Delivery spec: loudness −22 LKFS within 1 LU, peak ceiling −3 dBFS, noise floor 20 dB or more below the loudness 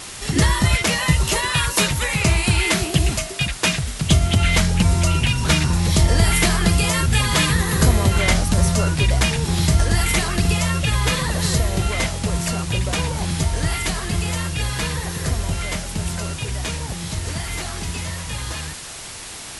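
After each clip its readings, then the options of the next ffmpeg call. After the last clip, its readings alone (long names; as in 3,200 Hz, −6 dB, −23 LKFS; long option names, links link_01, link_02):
background noise floor −34 dBFS; target noise floor −40 dBFS; integrated loudness −20.0 LKFS; sample peak −4.0 dBFS; target loudness −22.0 LKFS
→ -af "afftdn=noise_reduction=6:noise_floor=-34"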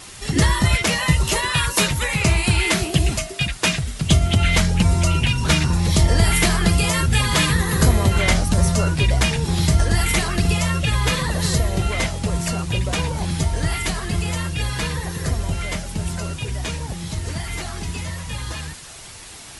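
background noise floor −39 dBFS; target noise floor −40 dBFS
→ -af "afftdn=noise_reduction=6:noise_floor=-39"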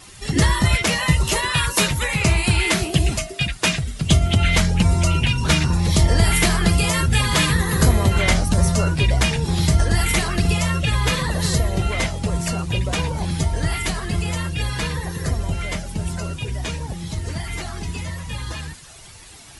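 background noise floor −42 dBFS; integrated loudness −20.0 LKFS; sample peak −4.5 dBFS; target loudness −22.0 LKFS
→ -af "volume=-2dB"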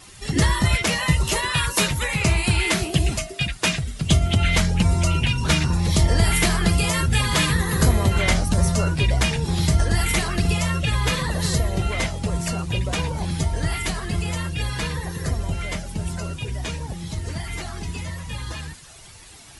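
integrated loudness −22.0 LKFS; sample peak −6.5 dBFS; background noise floor −44 dBFS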